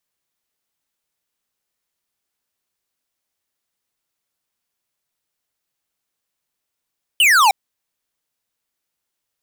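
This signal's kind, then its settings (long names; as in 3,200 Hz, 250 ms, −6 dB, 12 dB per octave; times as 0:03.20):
single falling chirp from 3,100 Hz, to 750 Hz, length 0.31 s square, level −12 dB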